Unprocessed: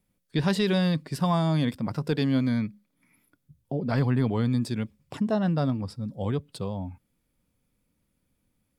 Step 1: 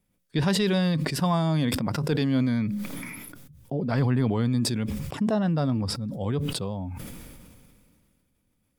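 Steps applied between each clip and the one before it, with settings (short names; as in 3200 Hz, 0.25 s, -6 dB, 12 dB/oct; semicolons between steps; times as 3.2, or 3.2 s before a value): notch 4200 Hz, Q 26; sustainer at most 27 dB/s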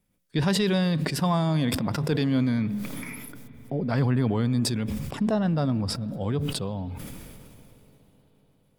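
reverb RT60 5.4 s, pre-delay 86 ms, DRR 18.5 dB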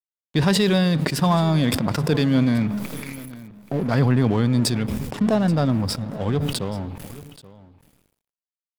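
crossover distortion -39.5 dBFS; echo 0.83 s -19 dB; gain +6 dB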